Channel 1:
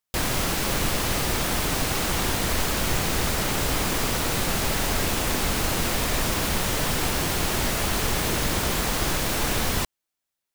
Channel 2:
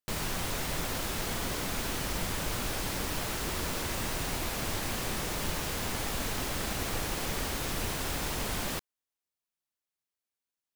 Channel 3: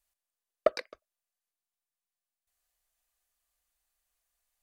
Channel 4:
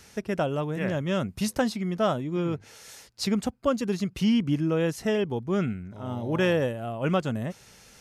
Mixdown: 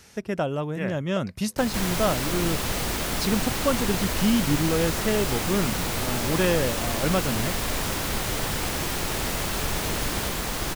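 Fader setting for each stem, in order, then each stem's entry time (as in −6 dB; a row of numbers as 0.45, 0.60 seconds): −4.0, 0.0, −11.5, +0.5 decibels; 1.60, 1.50, 0.50, 0.00 seconds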